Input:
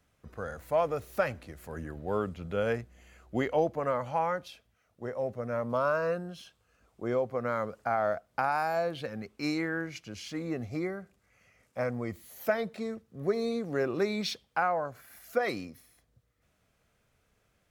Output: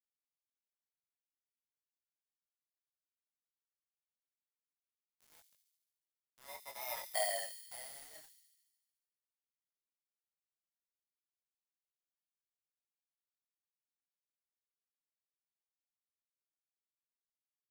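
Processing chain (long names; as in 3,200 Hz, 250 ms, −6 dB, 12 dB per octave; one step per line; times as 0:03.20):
samples in bit-reversed order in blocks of 32 samples
source passing by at 0:07.05, 32 m/s, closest 1.8 metres
Butterworth high-pass 640 Hz 48 dB per octave
high-shelf EQ 2,800 Hz −4.5 dB
centre clipping without the shift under −54.5 dBFS
delay with a high-pass on its return 72 ms, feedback 68%, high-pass 3,900 Hz, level −7.5 dB
micro pitch shift up and down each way 19 cents
level +10.5 dB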